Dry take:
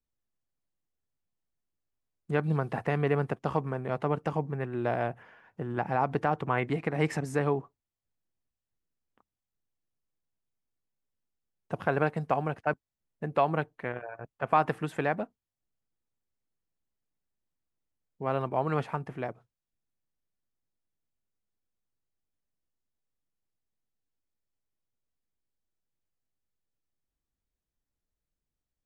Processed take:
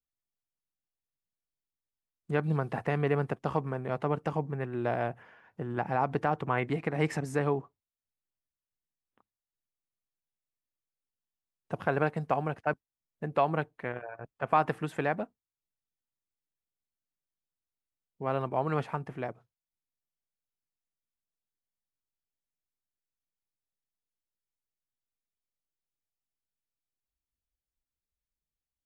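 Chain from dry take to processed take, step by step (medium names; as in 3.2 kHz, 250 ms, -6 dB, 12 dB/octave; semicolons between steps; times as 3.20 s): spectral noise reduction 9 dB; trim -1 dB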